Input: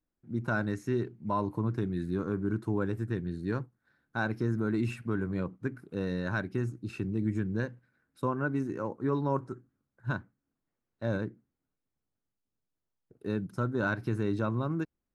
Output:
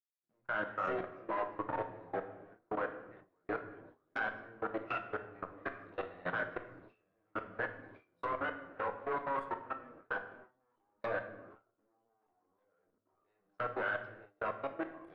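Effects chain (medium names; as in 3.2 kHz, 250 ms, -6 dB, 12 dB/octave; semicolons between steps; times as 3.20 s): one-sided clip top -38.5 dBFS; chorus voices 4, 0.19 Hz, delay 22 ms, depth 4.3 ms; low-pass that closes with the level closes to 2 kHz, closed at -36.5 dBFS; three-band isolator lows -24 dB, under 480 Hz, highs -12 dB, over 4.2 kHz; ever faster or slower copies 214 ms, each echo -2 st, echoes 3, each echo -6 dB; band-stop 870 Hz, Q 12; level held to a coarse grid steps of 23 dB; simulated room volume 370 m³, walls mixed, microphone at 0.55 m; gate with hold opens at -55 dBFS; trim +11 dB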